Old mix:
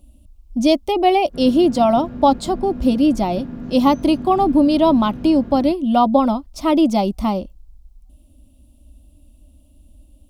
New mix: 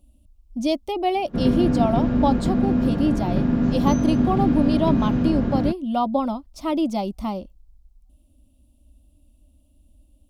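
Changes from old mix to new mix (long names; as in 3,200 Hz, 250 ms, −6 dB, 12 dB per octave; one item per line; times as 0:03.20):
speech −7.5 dB
background +11.0 dB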